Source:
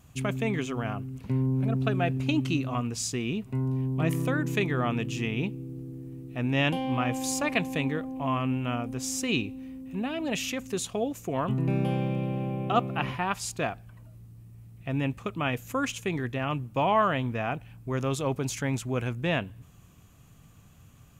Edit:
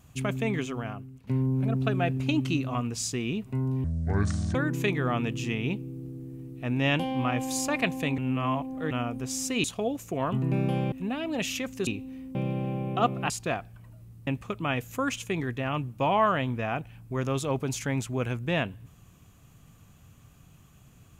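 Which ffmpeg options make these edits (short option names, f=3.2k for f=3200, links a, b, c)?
-filter_complex "[0:a]asplit=12[a][b][c][d][e][f][g][h][i][j][k][l];[a]atrim=end=1.27,asetpts=PTS-STARTPTS,afade=t=out:st=0.59:d=0.68:silence=0.199526[m];[b]atrim=start=1.27:end=3.844,asetpts=PTS-STARTPTS,afade=t=in:d=0.004:c=hsin:silence=0.199526[n];[c]atrim=start=3.84:end=4.28,asetpts=PTS-STARTPTS,asetrate=27342,aresample=44100[o];[d]atrim=start=4.276:end=7.912[p];[e]atrim=start=7.908:end=8.642,asetpts=PTS-STARTPTS,areverse[q];[f]atrim=start=8.638:end=9.372[r];[g]atrim=start=10.798:end=12.082[s];[h]atrim=start=9.848:end=10.802[t];[i]atrim=start=9.368:end=9.852[u];[j]atrim=start=12.078:end=13.032[v];[k]atrim=start=13.428:end=14.402[w];[l]atrim=start=15.028[x];[m][n]concat=n=2:v=0:a=1[y];[y][o]acrossfade=d=0.004:c1=hsin:c2=hsin[z];[z][p]acrossfade=d=0.004:c1=hsin:c2=hsin[aa];[aa][q]acrossfade=d=0.004:c1=hsin:c2=hsin[ab];[ab][r]acrossfade=d=0.004:c1=hsin:c2=hsin[ac];[ac][s]acrossfade=d=0.004:c1=hsin:c2=hsin[ad];[ad][t]acrossfade=d=0.004:c1=hsin:c2=hsin[ae];[ae][u]acrossfade=d=0.004:c1=hsin:c2=hsin[af];[af][v]acrossfade=d=0.004:c1=hsin:c2=hsin[ag];[ag][w]acrossfade=d=0.004:c1=hsin:c2=hsin[ah];[ah][x]acrossfade=d=0.004:c1=hsin:c2=hsin"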